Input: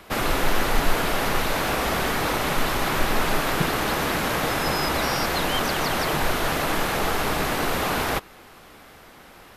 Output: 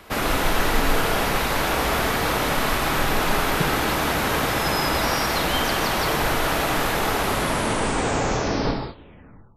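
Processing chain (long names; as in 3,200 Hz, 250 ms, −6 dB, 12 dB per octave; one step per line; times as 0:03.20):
turntable brake at the end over 2.48 s
reverb whose tail is shaped and stops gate 220 ms flat, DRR 3 dB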